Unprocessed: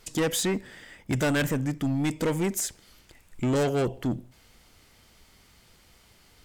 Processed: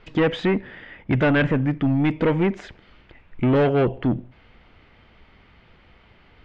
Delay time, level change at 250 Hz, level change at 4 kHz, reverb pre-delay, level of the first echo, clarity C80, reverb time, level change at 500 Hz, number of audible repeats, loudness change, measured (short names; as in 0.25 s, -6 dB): none, +6.5 dB, -0.5 dB, none, none, none, none, +6.5 dB, none, +6.0 dB